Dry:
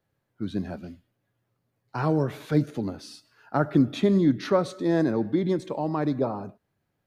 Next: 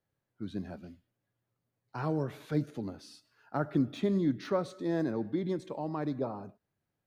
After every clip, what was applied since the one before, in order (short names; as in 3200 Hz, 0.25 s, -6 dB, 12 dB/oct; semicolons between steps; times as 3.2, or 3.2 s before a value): de-esser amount 100%; gain -8 dB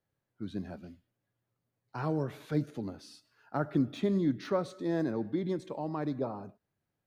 nothing audible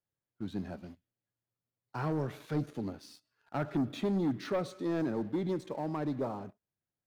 sample leveller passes 2; gain -6.5 dB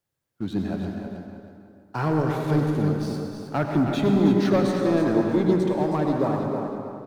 feedback echo 0.318 s, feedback 28%, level -8 dB; on a send at -3 dB: reverb RT60 2.4 s, pre-delay 83 ms; on the sum: gain +9 dB